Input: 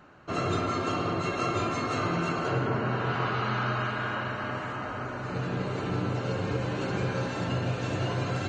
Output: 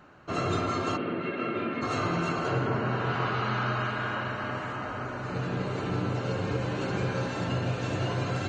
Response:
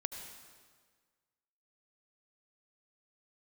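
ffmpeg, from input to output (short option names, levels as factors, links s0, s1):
-filter_complex "[0:a]asplit=3[s0][s1][s2];[s0]afade=t=out:st=0.96:d=0.02[s3];[s1]highpass=210,equalizer=f=230:t=q:w=4:g=7,equalizer=f=750:t=q:w=4:g=-9,equalizer=f=1100:t=q:w=4:g=-9,lowpass=f=2900:w=0.5412,lowpass=f=2900:w=1.3066,afade=t=in:st=0.96:d=0.02,afade=t=out:st=1.81:d=0.02[s4];[s2]afade=t=in:st=1.81:d=0.02[s5];[s3][s4][s5]amix=inputs=3:normalize=0"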